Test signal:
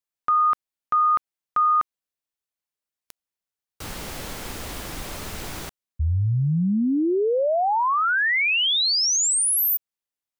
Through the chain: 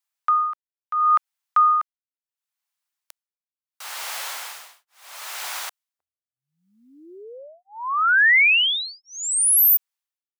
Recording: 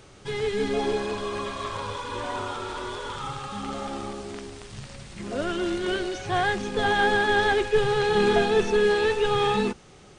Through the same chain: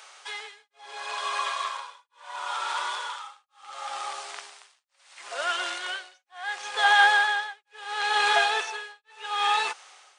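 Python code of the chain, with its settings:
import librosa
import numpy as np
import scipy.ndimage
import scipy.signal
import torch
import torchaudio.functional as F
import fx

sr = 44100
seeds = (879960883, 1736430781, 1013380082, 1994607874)

y = x * (1.0 - 1.0 / 2.0 + 1.0 / 2.0 * np.cos(2.0 * np.pi * 0.72 * (np.arange(len(x)) / sr)))
y = scipy.signal.sosfilt(scipy.signal.butter(4, 780.0, 'highpass', fs=sr, output='sos'), y)
y = F.gain(torch.from_numpy(y), 6.5).numpy()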